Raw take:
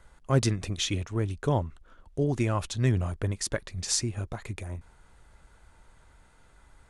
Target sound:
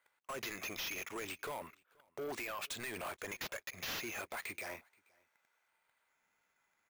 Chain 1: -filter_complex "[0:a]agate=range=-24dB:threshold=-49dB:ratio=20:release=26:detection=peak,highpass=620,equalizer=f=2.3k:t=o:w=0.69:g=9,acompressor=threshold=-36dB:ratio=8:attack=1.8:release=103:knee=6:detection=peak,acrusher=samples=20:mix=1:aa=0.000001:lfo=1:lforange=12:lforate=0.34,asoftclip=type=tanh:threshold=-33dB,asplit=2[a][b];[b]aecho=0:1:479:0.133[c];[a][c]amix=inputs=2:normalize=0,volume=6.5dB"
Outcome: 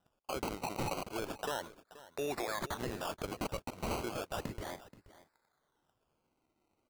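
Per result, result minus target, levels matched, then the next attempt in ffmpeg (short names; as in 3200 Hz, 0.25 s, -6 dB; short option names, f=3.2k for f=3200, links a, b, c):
decimation with a swept rate: distortion +12 dB; echo-to-direct +11 dB; soft clip: distortion -9 dB
-filter_complex "[0:a]agate=range=-24dB:threshold=-49dB:ratio=20:release=26:detection=peak,highpass=620,equalizer=f=2.3k:t=o:w=0.69:g=9,acompressor=threshold=-36dB:ratio=8:attack=1.8:release=103:knee=6:detection=peak,acrusher=samples=4:mix=1:aa=0.000001:lfo=1:lforange=2.4:lforate=0.34,asoftclip=type=tanh:threshold=-33dB,asplit=2[a][b];[b]aecho=0:1:479:0.133[c];[a][c]amix=inputs=2:normalize=0,volume=6.5dB"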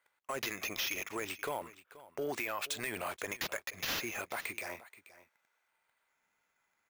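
echo-to-direct +11 dB; soft clip: distortion -10 dB
-filter_complex "[0:a]agate=range=-24dB:threshold=-49dB:ratio=20:release=26:detection=peak,highpass=620,equalizer=f=2.3k:t=o:w=0.69:g=9,acompressor=threshold=-36dB:ratio=8:attack=1.8:release=103:knee=6:detection=peak,acrusher=samples=4:mix=1:aa=0.000001:lfo=1:lforange=2.4:lforate=0.34,asoftclip=type=tanh:threshold=-33dB,asplit=2[a][b];[b]aecho=0:1:479:0.0376[c];[a][c]amix=inputs=2:normalize=0,volume=6.5dB"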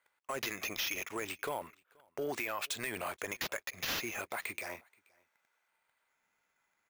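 soft clip: distortion -10 dB
-filter_complex "[0:a]agate=range=-24dB:threshold=-49dB:ratio=20:release=26:detection=peak,highpass=620,equalizer=f=2.3k:t=o:w=0.69:g=9,acompressor=threshold=-36dB:ratio=8:attack=1.8:release=103:knee=6:detection=peak,acrusher=samples=4:mix=1:aa=0.000001:lfo=1:lforange=2.4:lforate=0.34,asoftclip=type=tanh:threshold=-44dB,asplit=2[a][b];[b]aecho=0:1:479:0.0376[c];[a][c]amix=inputs=2:normalize=0,volume=6.5dB"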